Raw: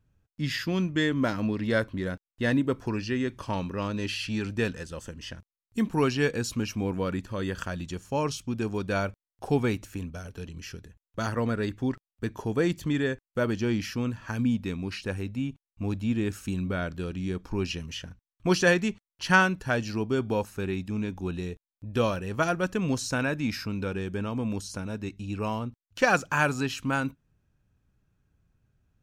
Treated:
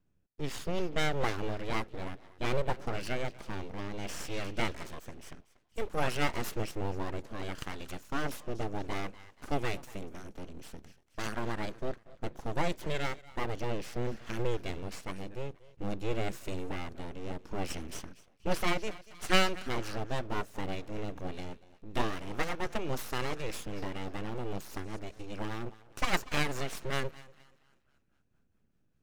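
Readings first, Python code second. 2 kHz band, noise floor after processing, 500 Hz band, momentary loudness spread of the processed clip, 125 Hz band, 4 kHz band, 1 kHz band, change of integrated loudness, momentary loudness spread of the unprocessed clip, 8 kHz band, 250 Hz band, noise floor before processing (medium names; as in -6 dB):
-8.0 dB, -71 dBFS, -7.0 dB, 13 LU, -8.5 dB, -3.0 dB, -4.5 dB, -7.5 dB, 11 LU, -5.0 dB, -11.0 dB, under -85 dBFS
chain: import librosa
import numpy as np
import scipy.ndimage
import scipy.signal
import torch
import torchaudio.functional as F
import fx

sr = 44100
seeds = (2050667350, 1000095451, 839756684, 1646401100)

y = fx.echo_thinned(x, sr, ms=238, feedback_pct=43, hz=230.0, wet_db=-18.0)
y = fx.rotary_switch(y, sr, hz=0.6, then_hz=5.0, switch_at_s=19.3)
y = np.abs(y)
y = y * librosa.db_to_amplitude(-1.5)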